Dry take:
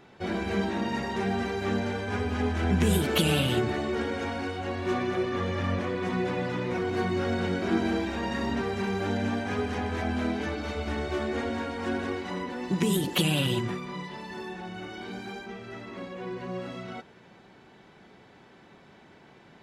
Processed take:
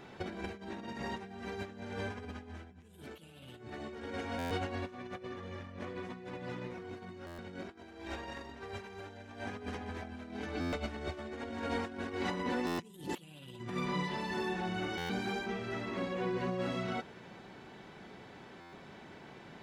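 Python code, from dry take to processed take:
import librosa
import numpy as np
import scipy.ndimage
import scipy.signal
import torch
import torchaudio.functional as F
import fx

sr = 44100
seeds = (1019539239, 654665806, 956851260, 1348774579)

y = fx.over_compress(x, sr, threshold_db=-35.0, ratio=-0.5)
y = fx.peak_eq(y, sr, hz=200.0, db=-10.0, octaves=0.9, at=(7.69, 9.46))
y = fx.buffer_glitch(y, sr, at_s=(4.38, 7.26, 10.6, 12.66, 14.97, 18.6), block=512, repeats=10)
y = y * librosa.db_to_amplitude(-4.0)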